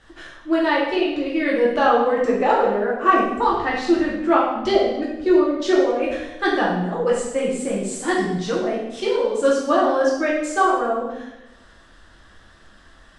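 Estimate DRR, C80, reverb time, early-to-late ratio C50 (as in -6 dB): -6.0 dB, 5.0 dB, 0.95 s, 2.0 dB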